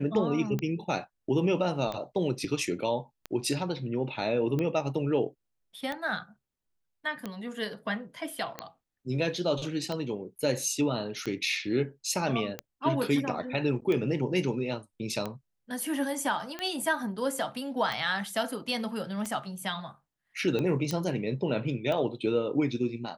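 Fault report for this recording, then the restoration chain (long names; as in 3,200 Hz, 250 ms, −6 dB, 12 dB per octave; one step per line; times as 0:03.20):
scratch tick 45 rpm −19 dBFS
0:20.91: click −17 dBFS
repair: click removal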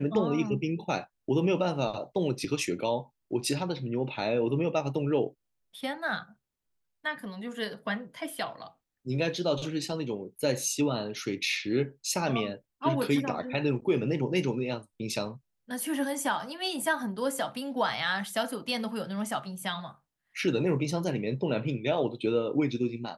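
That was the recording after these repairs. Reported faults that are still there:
none of them is left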